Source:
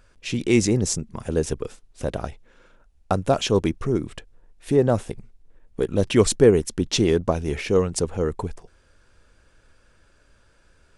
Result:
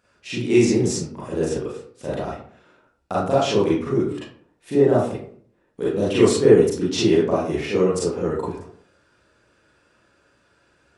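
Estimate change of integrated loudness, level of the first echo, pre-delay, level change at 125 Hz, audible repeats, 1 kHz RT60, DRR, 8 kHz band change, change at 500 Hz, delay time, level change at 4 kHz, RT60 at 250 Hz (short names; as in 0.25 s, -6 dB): +2.0 dB, none, 32 ms, -1.5 dB, none, 0.50 s, -9.0 dB, -3.0 dB, +3.0 dB, none, 0.0 dB, 0.65 s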